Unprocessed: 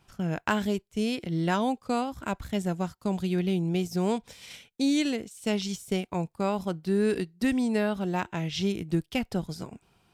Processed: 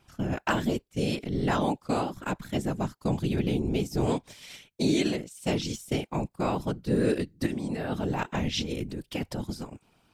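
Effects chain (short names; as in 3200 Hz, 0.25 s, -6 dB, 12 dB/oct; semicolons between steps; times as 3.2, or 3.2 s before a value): 7.46–9.5 negative-ratio compressor -30 dBFS, ratio -1; whisperiser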